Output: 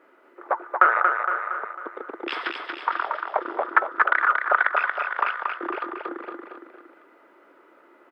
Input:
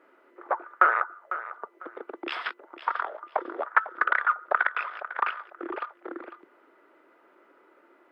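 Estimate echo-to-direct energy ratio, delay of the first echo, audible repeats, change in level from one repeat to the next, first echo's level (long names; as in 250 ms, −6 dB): −3.0 dB, 231 ms, 3, −5.5 dB, −4.5 dB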